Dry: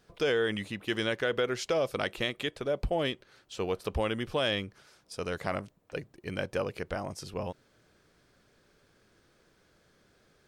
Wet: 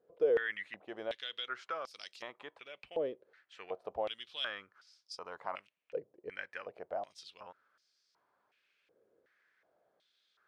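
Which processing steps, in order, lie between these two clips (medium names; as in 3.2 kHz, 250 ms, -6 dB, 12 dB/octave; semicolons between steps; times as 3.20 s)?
step-sequenced band-pass 2.7 Hz 490–5000 Hz; trim +2 dB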